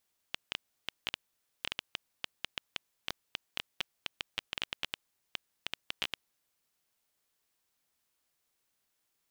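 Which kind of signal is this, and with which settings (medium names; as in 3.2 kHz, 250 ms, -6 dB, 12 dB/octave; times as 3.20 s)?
random clicks 7.7 per s -15 dBFS 5.85 s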